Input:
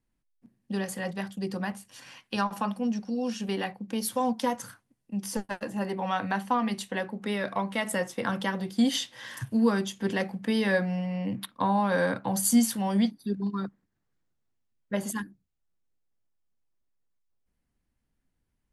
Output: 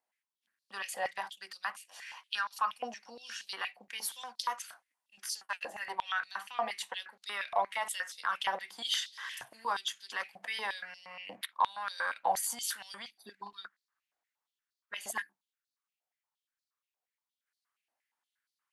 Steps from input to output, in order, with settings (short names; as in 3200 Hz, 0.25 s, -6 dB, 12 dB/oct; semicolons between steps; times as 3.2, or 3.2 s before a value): limiter -20.5 dBFS, peak gain reduction 9 dB; stepped high-pass 8.5 Hz 710–4300 Hz; gain -3.5 dB